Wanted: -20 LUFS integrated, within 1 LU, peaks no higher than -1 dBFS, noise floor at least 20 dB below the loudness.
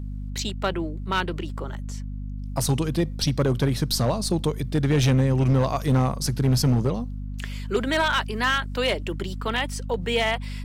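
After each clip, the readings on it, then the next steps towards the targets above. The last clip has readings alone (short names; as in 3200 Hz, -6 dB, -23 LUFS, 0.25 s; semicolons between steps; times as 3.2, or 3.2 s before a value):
clipped 1.7%; flat tops at -15.0 dBFS; hum 50 Hz; harmonics up to 250 Hz; hum level -30 dBFS; loudness -24.5 LUFS; peak -15.0 dBFS; loudness target -20.0 LUFS
-> clip repair -15 dBFS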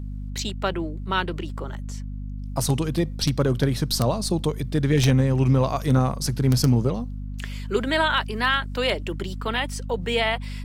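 clipped 0.0%; hum 50 Hz; harmonics up to 250 Hz; hum level -29 dBFS
-> notches 50/100/150/200/250 Hz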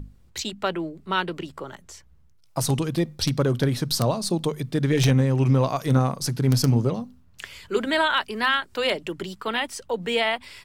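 hum none; loudness -24.0 LUFS; peak -6.0 dBFS; loudness target -20.0 LUFS
-> gain +4 dB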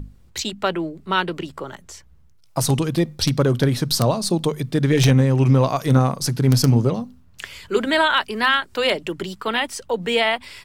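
loudness -20.0 LUFS; peak -2.0 dBFS; noise floor -51 dBFS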